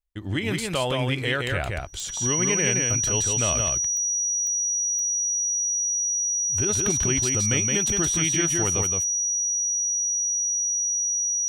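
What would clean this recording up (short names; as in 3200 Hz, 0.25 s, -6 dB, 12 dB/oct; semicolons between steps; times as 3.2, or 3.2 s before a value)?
de-click; notch 5800 Hz, Q 30; inverse comb 0.169 s -3.5 dB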